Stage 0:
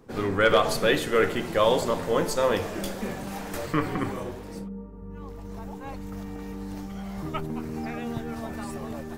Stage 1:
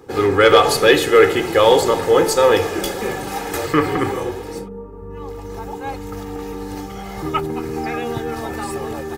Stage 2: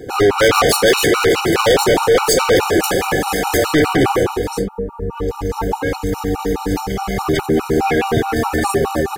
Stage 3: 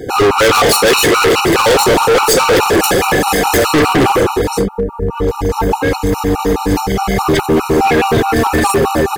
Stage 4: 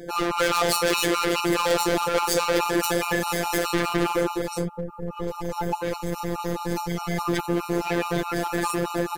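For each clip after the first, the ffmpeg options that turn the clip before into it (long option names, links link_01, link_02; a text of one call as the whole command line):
ffmpeg -i in.wav -af "highpass=frequency=110:poles=1,aecho=1:1:2.4:0.64,acontrast=86,volume=2dB" out.wav
ffmpeg -i in.wav -af "acontrast=79,asoftclip=type=hard:threshold=-14dB,afftfilt=real='re*gt(sin(2*PI*4.8*pts/sr)*(1-2*mod(floor(b*sr/1024/750),2)),0)':imag='im*gt(sin(2*PI*4.8*pts/sr)*(1-2*mod(floor(b*sr/1024/750),2)),0)':win_size=1024:overlap=0.75,volume=5.5dB" out.wav
ffmpeg -i in.wav -af "asoftclip=type=hard:threshold=-14dB,volume=6.5dB" out.wav
ffmpeg -i in.wav -af "afftfilt=real='hypot(re,im)*cos(PI*b)':imag='0':win_size=1024:overlap=0.75,volume=-9dB" out.wav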